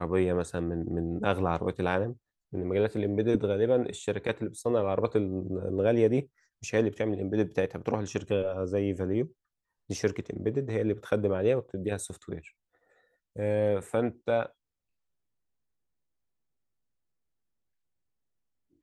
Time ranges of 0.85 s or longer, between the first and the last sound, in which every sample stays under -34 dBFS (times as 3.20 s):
12.39–13.36 s